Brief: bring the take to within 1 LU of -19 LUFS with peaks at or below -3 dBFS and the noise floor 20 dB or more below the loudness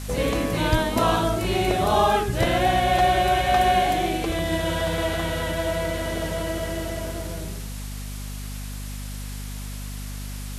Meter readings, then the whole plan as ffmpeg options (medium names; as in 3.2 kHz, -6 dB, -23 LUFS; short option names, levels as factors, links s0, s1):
hum 50 Hz; highest harmonic 250 Hz; hum level -31 dBFS; noise floor -33 dBFS; noise floor target -43 dBFS; loudness -23.0 LUFS; peak level -7.5 dBFS; loudness target -19.0 LUFS
-> -af "bandreject=f=50:t=h:w=4,bandreject=f=100:t=h:w=4,bandreject=f=150:t=h:w=4,bandreject=f=200:t=h:w=4,bandreject=f=250:t=h:w=4"
-af "afftdn=nr=10:nf=-33"
-af "volume=1.58"